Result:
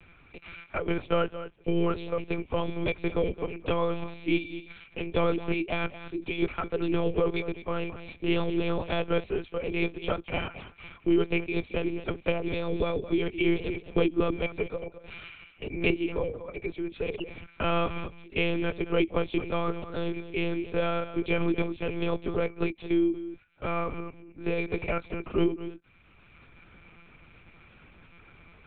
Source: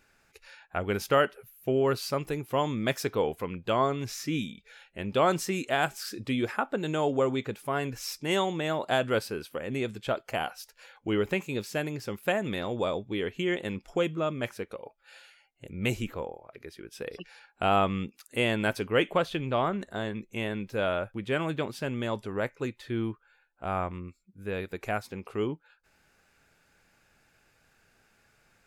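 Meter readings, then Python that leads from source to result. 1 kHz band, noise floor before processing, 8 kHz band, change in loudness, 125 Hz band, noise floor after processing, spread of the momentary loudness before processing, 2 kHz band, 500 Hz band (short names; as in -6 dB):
-4.5 dB, -67 dBFS, under -35 dB, 0.0 dB, +0.5 dB, -57 dBFS, 14 LU, -1.0 dB, 0.0 dB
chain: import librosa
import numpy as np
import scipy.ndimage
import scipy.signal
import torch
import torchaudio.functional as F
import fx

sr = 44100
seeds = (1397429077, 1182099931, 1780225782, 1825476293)

p1 = fx.low_shelf(x, sr, hz=66.0, db=-9.5)
p2 = fx.rider(p1, sr, range_db=10, speed_s=2.0)
p3 = fx.fixed_phaser(p2, sr, hz=1200.0, stages=8)
p4 = fx.small_body(p3, sr, hz=(320.0, 2300.0), ring_ms=60, db=17)
p5 = p4 + fx.echo_single(p4, sr, ms=218, db=-15.0, dry=0)
p6 = fx.lpc_monotone(p5, sr, seeds[0], pitch_hz=170.0, order=8)
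p7 = fx.band_squash(p6, sr, depth_pct=40)
y = p7 * librosa.db_to_amplitude(-1.0)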